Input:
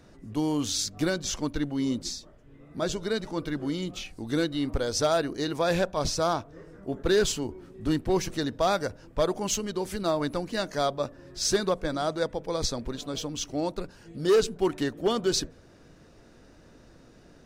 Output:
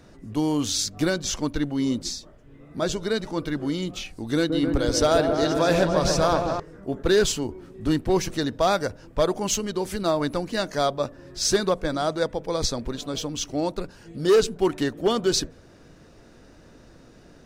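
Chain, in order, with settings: 4.36–6.60 s: delay with an opening low-pass 135 ms, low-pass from 750 Hz, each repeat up 1 oct, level -3 dB; trim +3.5 dB

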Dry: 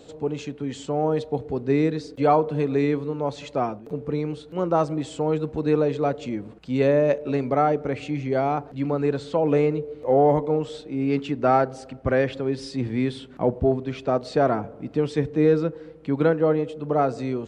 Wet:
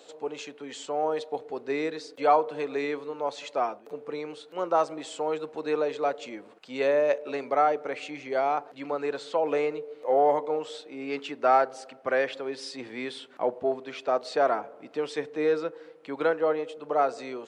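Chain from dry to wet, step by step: high-pass 570 Hz 12 dB/octave

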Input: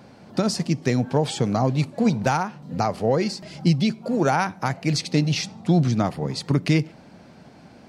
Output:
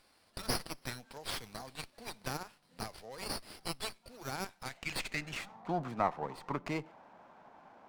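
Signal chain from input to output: band-pass sweep 5.5 kHz -> 1 kHz, 4.53–5.58 s; sliding maximum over 5 samples; trim +1 dB

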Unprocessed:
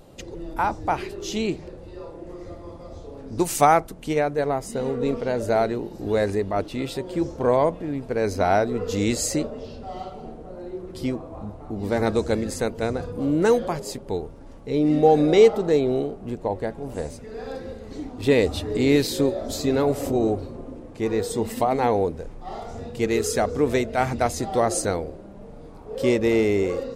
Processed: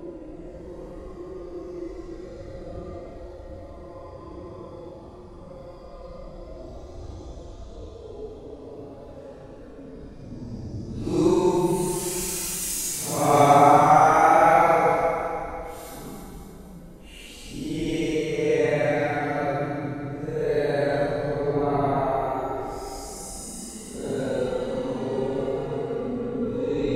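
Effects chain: flutter echo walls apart 4.8 m, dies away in 0.3 s; Paulstretch 9.5×, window 0.05 s, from 2.22 s; trim -2.5 dB

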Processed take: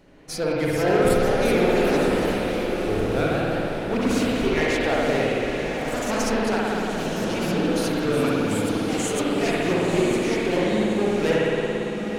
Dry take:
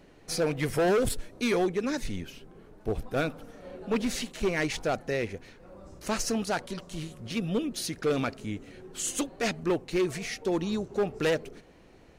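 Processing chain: echo that smears into a reverb 997 ms, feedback 48%, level -7 dB; spring tank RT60 3.1 s, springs 56 ms, chirp 40 ms, DRR -5.5 dB; ever faster or slower copies 498 ms, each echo +2 st, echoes 3, each echo -6 dB

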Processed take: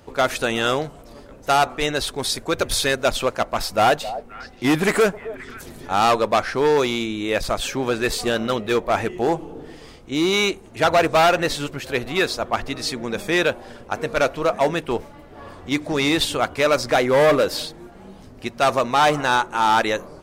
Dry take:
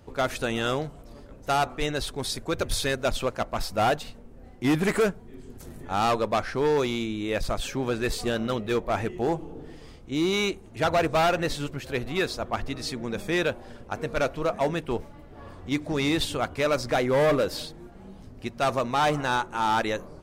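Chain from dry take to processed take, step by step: bass shelf 230 Hz -8.5 dB; 3.61–5.88 s: repeats whose band climbs or falls 264 ms, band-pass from 630 Hz, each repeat 1.4 oct, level -11.5 dB; trim +7.5 dB

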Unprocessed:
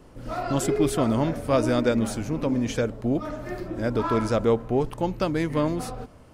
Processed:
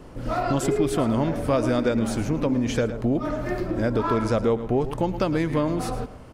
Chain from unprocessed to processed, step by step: treble shelf 4.9 kHz -4.5 dB; delay 110 ms -14.5 dB; compression 2.5:1, threshold -28 dBFS, peak gain reduction 8.5 dB; trim +6.5 dB

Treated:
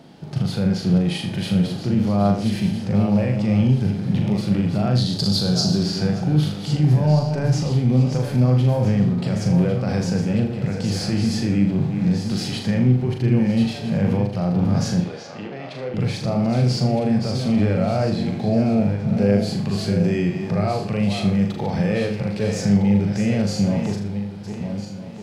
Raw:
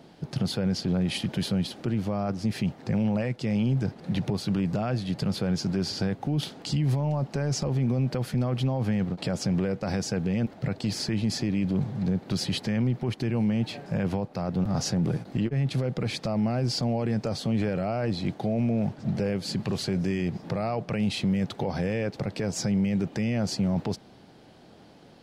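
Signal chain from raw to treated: backward echo that repeats 654 ms, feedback 46%, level -8 dB; 4.95–5.83 s: resonant high shelf 3.2 kHz +9.5 dB, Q 3; harmonic-percussive split percussive -10 dB; 15.00–15.94 s: three-band isolator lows -21 dB, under 380 Hz, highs -18 dB, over 6 kHz; flutter echo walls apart 6.8 m, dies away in 0.44 s; trim +7 dB

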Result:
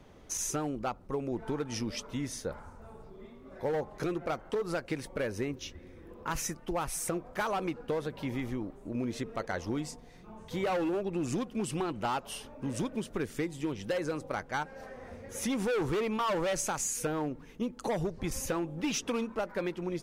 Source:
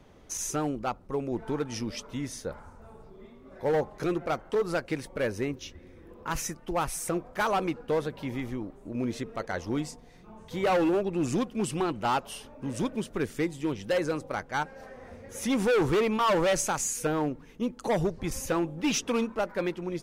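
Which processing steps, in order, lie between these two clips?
compression, threshold -29 dBFS, peak gain reduction 6.5 dB

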